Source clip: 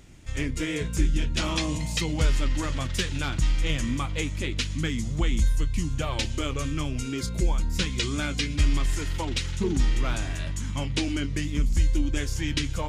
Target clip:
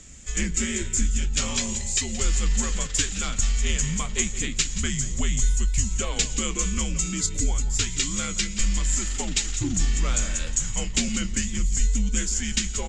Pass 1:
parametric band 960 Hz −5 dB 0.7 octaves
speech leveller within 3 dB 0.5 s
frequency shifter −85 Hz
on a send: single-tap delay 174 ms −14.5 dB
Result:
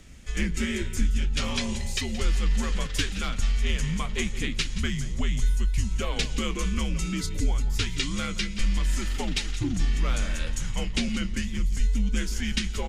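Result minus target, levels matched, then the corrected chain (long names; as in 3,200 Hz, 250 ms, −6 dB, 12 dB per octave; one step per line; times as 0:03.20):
8,000 Hz band −9.5 dB
low-pass with resonance 7,400 Hz, resonance Q 8.7
parametric band 960 Hz −5 dB 0.7 octaves
speech leveller within 3 dB 0.5 s
frequency shifter −85 Hz
on a send: single-tap delay 174 ms −14.5 dB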